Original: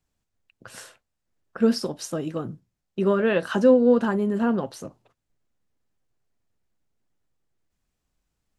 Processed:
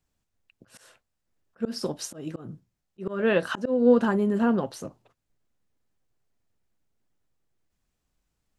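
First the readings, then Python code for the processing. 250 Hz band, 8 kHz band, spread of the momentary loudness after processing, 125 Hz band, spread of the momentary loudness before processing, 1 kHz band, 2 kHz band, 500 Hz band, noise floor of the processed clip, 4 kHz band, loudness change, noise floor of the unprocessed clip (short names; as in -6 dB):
-3.0 dB, -1.0 dB, 20 LU, -3.0 dB, 18 LU, -2.0 dB, -1.0 dB, -3.5 dB, -80 dBFS, -2.5 dB, -2.5 dB, -81 dBFS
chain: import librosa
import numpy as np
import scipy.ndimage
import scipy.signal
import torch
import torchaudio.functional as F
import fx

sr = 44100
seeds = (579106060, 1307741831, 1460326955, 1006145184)

y = fx.auto_swell(x, sr, attack_ms=212.0)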